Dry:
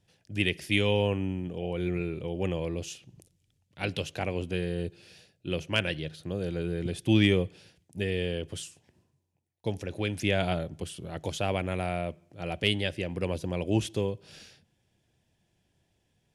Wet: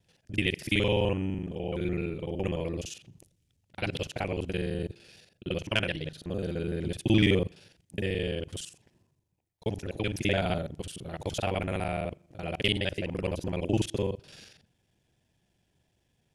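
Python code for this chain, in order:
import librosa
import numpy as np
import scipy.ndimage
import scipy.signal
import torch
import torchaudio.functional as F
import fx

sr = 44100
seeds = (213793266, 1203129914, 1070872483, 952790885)

y = fx.local_reverse(x, sr, ms=42.0)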